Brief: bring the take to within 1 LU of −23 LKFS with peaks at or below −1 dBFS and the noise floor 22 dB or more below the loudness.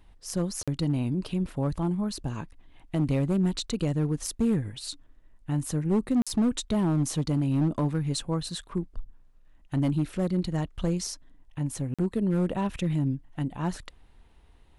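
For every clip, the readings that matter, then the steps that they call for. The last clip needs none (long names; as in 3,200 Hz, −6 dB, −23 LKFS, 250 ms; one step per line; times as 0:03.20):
share of clipped samples 1.3%; peaks flattened at −19.0 dBFS; number of dropouts 3; longest dropout 46 ms; integrated loudness −28.5 LKFS; sample peak −19.0 dBFS; target loudness −23.0 LKFS
→ clipped peaks rebuilt −19 dBFS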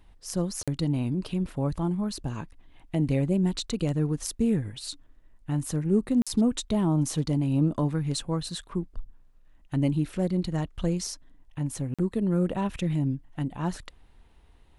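share of clipped samples 0.0%; number of dropouts 3; longest dropout 46 ms
→ repair the gap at 0:00.63/0:06.22/0:11.94, 46 ms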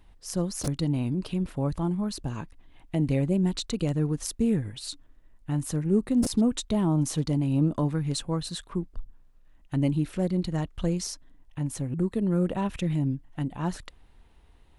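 number of dropouts 0; integrated loudness −28.0 LKFS; sample peak −13.0 dBFS; target loudness −23.0 LKFS
→ level +5 dB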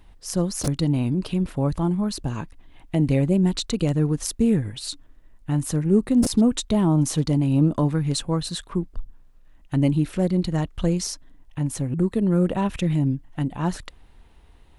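integrated loudness −23.0 LKFS; sample peak −8.0 dBFS; background noise floor −51 dBFS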